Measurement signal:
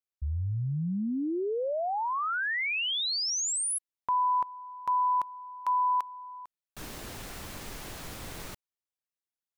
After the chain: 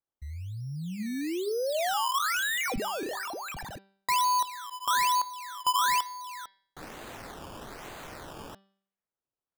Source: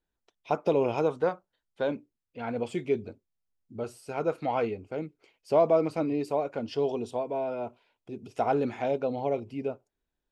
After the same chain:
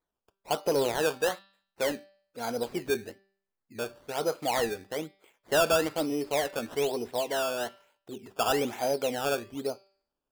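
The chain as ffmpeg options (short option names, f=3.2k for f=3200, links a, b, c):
-filter_complex "[0:a]asplit=2[a][b];[b]highpass=f=720:p=1,volume=14dB,asoftclip=type=tanh:threshold=-12.5dB[c];[a][c]amix=inputs=2:normalize=0,lowpass=f=1.5k:p=1,volume=-6dB,acrusher=samples=15:mix=1:aa=0.000001:lfo=1:lforange=15:lforate=1.1,bandreject=f=195.3:t=h:w=4,bandreject=f=390.6:t=h:w=4,bandreject=f=585.9:t=h:w=4,bandreject=f=781.2:t=h:w=4,bandreject=f=976.5:t=h:w=4,bandreject=f=1.1718k:t=h:w=4,bandreject=f=1.3671k:t=h:w=4,bandreject=f=1.5624k:t=h:w=4,bandreject=f=1.7577k:t=h:w=4,bandreject=f=1.953k:t=h:w=4,bandreject=f=2.1483k:t=h:w=4,bandreject=f=2.3436k:t=h:w=4,bandreject=f=2.5389k:t=h:w=4,bandreject=f=2.7342k:t=h:w=4,bandreject=f=2.9295k:t=h:w=4,bandreject=f=3.1248k:t=h:w=4,bandreject=f=3.3201k:t=h:w=4,bandreject=f=3.5154k:t=h:w=4,bandreject=f=3.7107k:t=h:w=4,bandreject=f=3.906k:t=h:w=4,bandreject=f=4.1013k:t=h:w=4,bandreject=f=4.2966k:t=h:w=4,bandreject=f=4.4919k:t=h:w=4,bandreject=f=4.6872k:t=h:w=4,bandreject=f=4.8825k:t=h:w=4,bandreject=f=5.0778k:t=h:w=4,bandreject=f=5.2731k:t=h:w=4,volume=-3dB"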